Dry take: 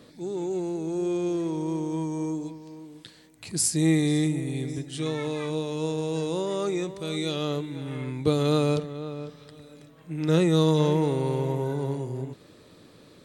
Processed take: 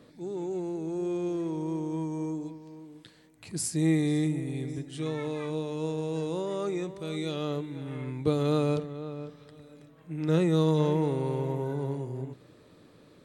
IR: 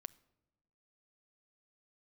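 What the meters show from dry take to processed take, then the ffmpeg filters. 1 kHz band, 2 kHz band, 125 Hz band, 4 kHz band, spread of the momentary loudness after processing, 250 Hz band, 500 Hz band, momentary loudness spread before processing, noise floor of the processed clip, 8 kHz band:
-3.5 dB, -5.0 dB, -3.0 dB, -7.5 dB, 14 LU, -3.0 dB, -3.5 dB, 14 LU, -57 dBFS, -8.0 dB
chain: -filter_complex "[0:a]asplit=2[a][b];[1:a]atrim=start_sample=2205,lowpass=3.1k[c];[b][c]afir=irnorm=-1:irlink=0,volume=1dB[d];[a][d]amix=inputs=2:normalize=0,volume=-7.5dB"

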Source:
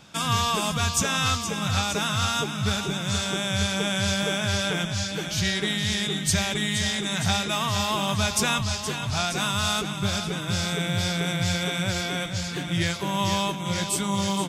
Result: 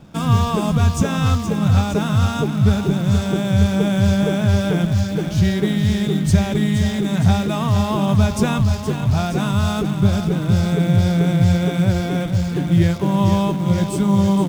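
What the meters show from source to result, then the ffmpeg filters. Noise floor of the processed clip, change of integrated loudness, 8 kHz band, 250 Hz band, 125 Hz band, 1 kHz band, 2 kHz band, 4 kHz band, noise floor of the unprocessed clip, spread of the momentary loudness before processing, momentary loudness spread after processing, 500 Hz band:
-25 dBFS, +7.0 dB, -6.0 dB, +12.0 dB, +12.5 dB, +2.5 dB, -2.5 dB, -5.5 dB, -32 dBFS, 4 LU, 3 LU, +8.0 dB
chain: -filter_complex "[0:a]tiltshelf=f=920:g=10,asplit=2[a][b];[b]acrusher=bits=6:dc=4:mix=0:aa=0.000001,volume=-8dB[c];[a][c]amix=inputs=2:normalize=0"

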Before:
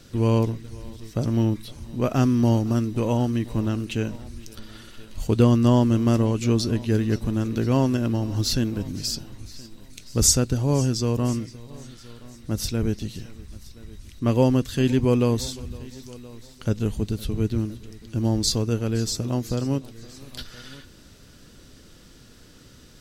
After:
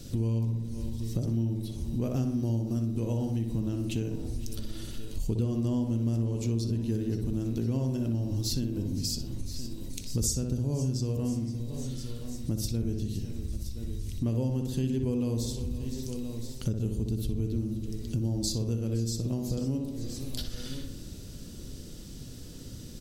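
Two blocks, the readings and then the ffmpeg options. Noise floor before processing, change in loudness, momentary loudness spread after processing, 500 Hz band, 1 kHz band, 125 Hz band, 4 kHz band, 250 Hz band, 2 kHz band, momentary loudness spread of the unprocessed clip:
-49 dBFS, -8.5 dB, 11 LU, -11.0 dB, -17.5 dB, -5.5 dB, -8.5 dB, -7.5 dB, under -10 dB, 21 LU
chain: -filter_complex "[0:a]equalizer=f=1.4k:w=0.52:g=-15,asplit=2[a][b];[b]adelay=61,lowpass=f=2.2k:p=1,volume=-4.5dB,asplit=2[c][d];[d]adelay=61,lowpass=f=2.2k:p=1,volume=0.55,asplit=2[e][f];[f]adelay=61,lowpass=f=2.2k:p=1,volume=0.55,asplit=2[g][h];[h]adelay=61,lowpass=f=2.2k:p=1,volume=0.55,asplit=2[i][j];[j]adelay=61,lowpass=f=2.2k:p=1,volume=0.55,asplit=2[k][l];[l]adelay=61,lowpass=f=2.2k:p=1,volume=0.55,asplit=2[m][n];[n]adelay=61,lowpass=f=2.2k:p=1,volume=0.55[o];[c][e][g][i][k][m][o]amix=inputs=7:normalize=0[p];[a][p]amix=inputs=2:normalize=0,acompressor=threshold=-36dB:ratio=4,volume=7dB"

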